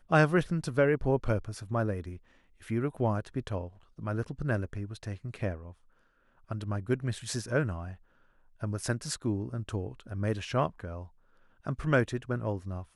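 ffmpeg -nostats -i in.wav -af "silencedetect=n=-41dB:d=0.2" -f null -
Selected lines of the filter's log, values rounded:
silence_start: 2.17
silence_end: 2.67 | silence_duration: 0.50
silence_start: 3.68
silence_end: 3.99 | silence_duration: 0.31
silence_start: 5.71
silence_end: 6.51 | silence_duration: 0.80
silence_start: 7.94
silence_end: 8.63 | silence_duration: 0.69
silence_start: 11.05
silence_end: 11.66 | silence_duration: 0.61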